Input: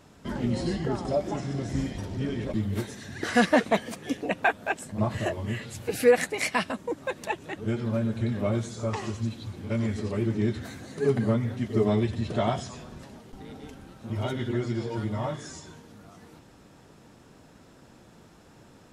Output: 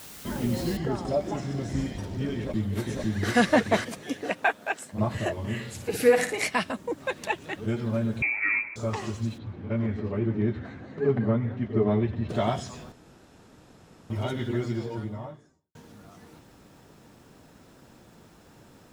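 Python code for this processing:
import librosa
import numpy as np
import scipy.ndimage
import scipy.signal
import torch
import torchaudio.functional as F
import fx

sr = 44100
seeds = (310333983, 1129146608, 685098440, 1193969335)

y = fx.noise_floor_step(x, sr, seeds[0], at_s=0.77, before_db=-45, after_db=-70, tilt_db=0.0)
y = fx.echo_throw(y, sr, start_s=2.36, length_s=0.98, ms=500, feedback_pct=30, wet_db=-0.5)
y = fx.highpass(y, sr, hz=fx.line((4.01, 200.0), (4.93, 580.0)), slope=6, at=(4.01, 4.93), fade=0.02)
y = fx.room_flutter(y, sr, wall_m=9.7, rt60_s=0.43, at=(5.43, 6.46), fade=0.02)
y = fx.peak_eq(y, sr, hz=2900.0, db=4.0, octaves=2.3, at=(7.0, 7.66))
y = fx.freq_invert(y, sr, carrier_hz=2500, at=(8.22, 8.76))
y = fx.lowpass(y, sr, hz=2100.0, slope=12, at=(9.37, 12.28), fade=0.02)
y = fx.studio_fade_out(y, sr, start_s=14.6, length_s=1.15)
y = fx.edit(y, sr, fx.room_tone_fill(start_s=12.92, length_s=1.18), tone=tone)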